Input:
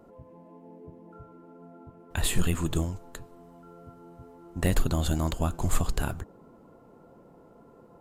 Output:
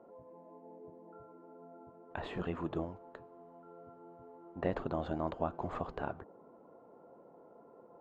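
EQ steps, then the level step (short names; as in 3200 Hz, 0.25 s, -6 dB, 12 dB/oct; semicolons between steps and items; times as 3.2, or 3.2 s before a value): band-pass 660 Hz, Q 0.98; air absorption 190 m; 0.0 dB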